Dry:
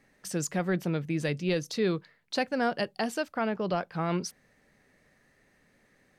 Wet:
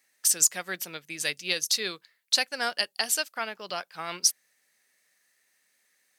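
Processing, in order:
first difference
boost into a limiter +27.5 dB
expander for the loud parts 1.5 to 1, over −36 dBFS
level −7.5 dB

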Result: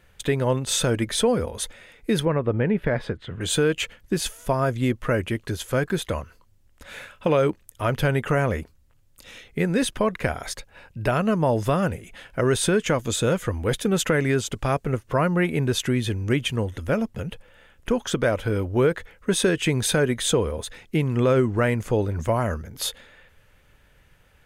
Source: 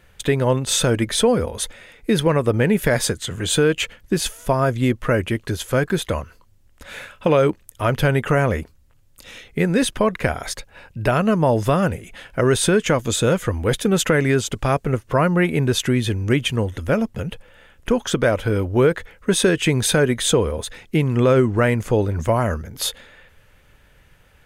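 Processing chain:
0:02.25–0:03.41: high-frequency loss of the air 410 metres
level −4 dB

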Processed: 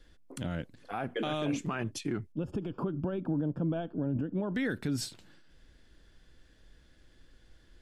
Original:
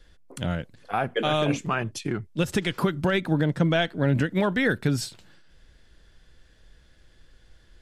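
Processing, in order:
parametric band 280 Hz +6.5 dB 0.67 octaves
brickwall limiter −19 dBFS, peak gain reduction 9.5 dB
0:02.32–0:04.55: moving average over 22 samples
level −4.5 dB

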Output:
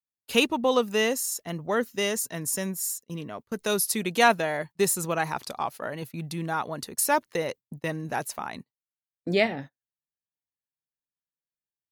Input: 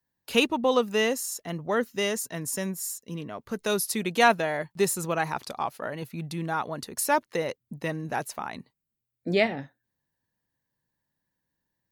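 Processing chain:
high-shelf EQ 5,900 Hz +4.5 dB
noise gate −40 dBFS, range −23 dB

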